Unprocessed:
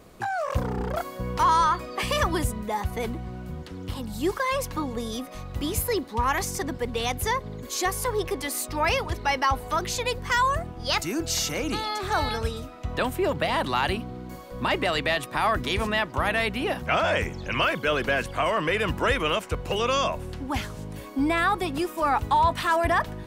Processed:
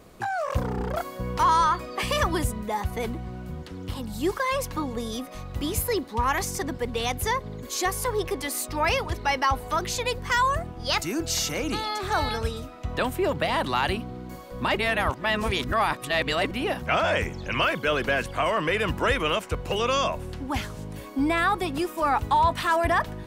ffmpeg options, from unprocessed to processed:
-filter_complex "[0:a]asplit=3[s0][s1][s2];[s0]atrim=end=14.772[s3];[s1]atrim=start=14.768:end=16.512,asetpts=PTS-STARTPTS,areverse[s4];[s2]atrim=start=16.508[s5];[s3][s4]acrossfade=d=0.004:c1=hsin:c2=hsin[s6];[s6][s5]acrossfade=d=0.004:c1=hsin:c2=hsin"

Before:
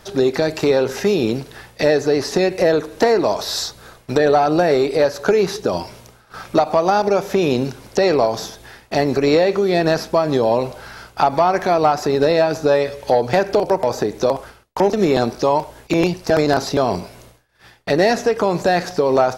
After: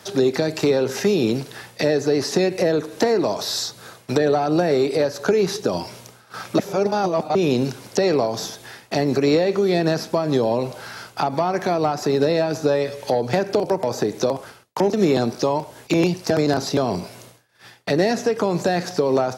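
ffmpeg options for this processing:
-filter_complex "[0:a]asplit=3[s0][s1][s2];[s0]atrim=end=6.592[s3];[s1]atrim=start=6.588:end=7.352,asetpts=PTS-STARTPTS,areverse[s4];[s2]atrim=start=7.348[s5];[s3][s4]acrossfade=d=0.004:c1=hsin:c2=hsin[s6];[s6][s5]acrossfade=d=0.004:c1=hsin:c2=hsin,highpass=f=97:w=0.5412,highpass=f=97:w=1.3066,equalizer=f=7500:w=0.42:g=4,acrossover=split=390[s7][s8];[s8]acompressor=threshold=0.0501:ratio=2[s9];[s7][s9]amix=inputs=2:normalize=0"

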